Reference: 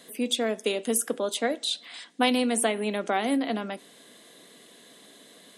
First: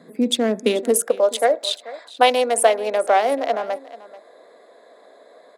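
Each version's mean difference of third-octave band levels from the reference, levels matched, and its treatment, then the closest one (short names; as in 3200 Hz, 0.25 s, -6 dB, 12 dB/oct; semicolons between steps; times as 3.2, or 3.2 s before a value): 7.0 dB: Wiener smoothing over 15 samples; high-pass sweep 150 Hz -> 580 Hz, 0.53–1.14; on a send: echo 0.436 s -17.5 dB; on the sum: gain +6 dB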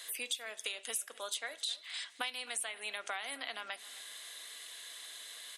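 10.0 dB: HPF 1400 Hz 12 dB/oct; compressor 5:1, threshold -43 dBFS, peak gain reduction 19 dB; on a send: feedback echo 0.262 s, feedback 35%, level -19.5 dB; on the sum: gain +6 dB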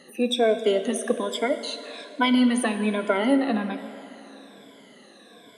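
5.5 dB: moving spectral ripple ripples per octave 1.7, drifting -1.2 Hz, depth 22 dB; LPF 2000 Hz 6 dB/oct; plate-style reverb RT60 3.2 s, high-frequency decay 0.8×, DRR 9.5 dB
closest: third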